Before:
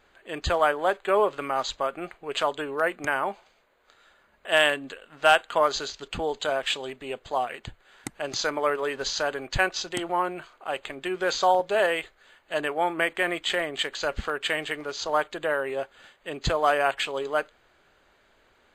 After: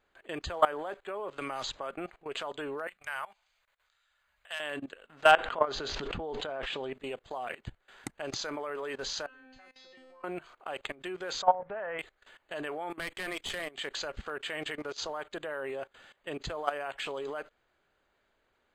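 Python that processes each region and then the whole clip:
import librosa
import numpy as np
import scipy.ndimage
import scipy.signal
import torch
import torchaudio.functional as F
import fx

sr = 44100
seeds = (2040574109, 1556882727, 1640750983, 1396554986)

y = fx.chain(x, sr, fx.steep_lowpass(hz=12000.0, slope=72),
    fx.band_squash(depth_pct=100), at=(1.38, 1.91))
y = fx.chain(y, sr, fx.tone_stack(knobs='10-0-10'),
    fx.transformer_sat(knee_hz=1500.0), at=(2.87, 4.6))
y = fx.chain(y, sr, fx.spacing_loss(db_at_10k=21),
    fx.env_flatten(amount_pct=70), at=(5.31, 6.93))
y = fx.chain(y, sr, fx.lowpass(hz=3900.0, slope=12),
    fx.comb_fb(f0_hz=260.0, decay_s=0.69, harmonics='all', damping=0.0, mix_pct=100),
    fx.band_squash(depth_pct=70), at=(9.26, 10.24))
y = fx.chain(y, sr, fx.law_mismatch(coded='mu'),
    fx.lowpass(hz=1900.0, slope=24),
    fx.peak_eq(hz=350.0, db=-10.0, octaves=0.63), at=(11.42, 11.99))
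y = fx.chain(y, sr, fx.high_shelf(hz=2800.0, db=11.5),
    fx.tube_stage(drive_db=15.0, bias=0.8), at=(12.9, 13.75))
y = fx.high_shelf(y, sr, hz=3400.0, db=-3.0)
y = fx.level_steps(y, sr, step_db=19)
y = y * 10.0 ** (1.5 / 20.0)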